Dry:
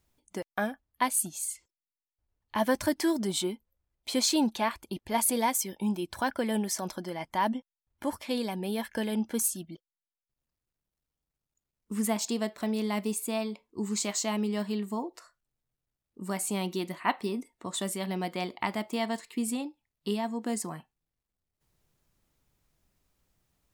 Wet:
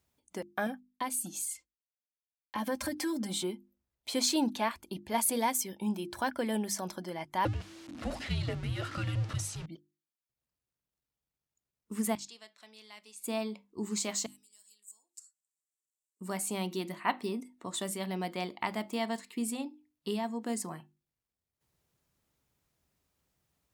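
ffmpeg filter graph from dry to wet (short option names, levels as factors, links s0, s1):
-filter_complex "[0:a]asettb=1/sr,asplit=3[s0][s1][s2];[s0]atrim=end=0.664[s3];[s1]atrim=start=0.66:end=3.43,asetpts=PTS-STARTPTS,afade=t=in:d=0.004:c=qsin,afade=t=out:st=2.766:d=0.004:c=qsin,agate=range=0.0224:threshold=0.00158:ratio=3:release=100:detection=peak,aecho=1:1:3.8:0.92,atrim=end_sample=122157,acompressor=threshold=0.0355:ratio=3:attack=3.2:release=140:knee=1:detection=peak[s4];[s2]atrim=start=3.426[s5];[s3][s4]acrossfade=d=0.004:c1=hsin:c2=qsin[s6];[s6][s5]acrossfade=d=0.004:c1=qsin:c2=hsin,asettb=1/sr,asplit=3[s7][s8][s9];[s7]atrim=end=7.454[s10];[s8]atrim=start=7.45:end=9.66,asetpts=PTS-STARTPTS,afade=t=in:d=0.004:c=qsin,afade=t=out:st=2.206:d=0.004:c=qsin,aeval=exprs='val(0)+0.5*0.0178*sgn(val(0))':c=same,lowpass=5700,afreqshift=-330[s11];[s9]atrim=start=9.656[s12];[s10][s11]acrossfade=d=0.004:c1=hsin:c2=qsin[s13];[s13][s12]acrossfade=d=0.004:c1=qsin:c2=hsin,asettb=1/sr,asplit=3[s14][s15][s16];[s14]atrim=end=12.154[s17];[s15]atrim=start=12.15:end=13.24,asetpts=PTS-STARTPTS,afade=t=in:d=0.004:c=qsin,afade=t=out:st=1.086:d=0.004:c=qsin,lowpass=4600,aderivative[s18];[s16]atrim=start=13.236[s19];[s17][s18]acrossfade=d=0.004:c1=hsin:c2=qsin[s20];[s20][s19]acrossfade=d=0.004:c1=qsin:c2=hsin,asettb=1/sr,asplit=3[s21][s22][s23];[s21]atrim=end=14.264[s24];[s22]atrim=start=14.26:end=16.21,asetpts=PTS-STARTPTS,afade=t=in:d=0.004:c=qsin,afade=t=out:st=1.946:d=0.004:c=qsin,acompressor=threshold=0.0141:ratio=2.5:attack=3.2:release=140:knee=1:detection=peak,bandpass=f=7600:t=q:w=4.6,aemphasis=mode=production:type=75fm[s25];[s23]atrim=start=16.206[s26];[s24][s25]acrossfade=d=0.004:c1=hsin:c2=qsin[s27];[s27][s26]acrossfade=d=0.004:c1=qsin:c2=hsin,highpass=57,bandreject=f=50:t=h:w=6,bandreject=f=100:t=h:w=6,bandreject=f=150:t=h:w=6,bandreject=f=200:t=h:w=6,bandreject=f=250:t=h:w=6,bandreject=f=300:t=h:w=6,bandreject=f=350:t=h:w=6,volume=0.75"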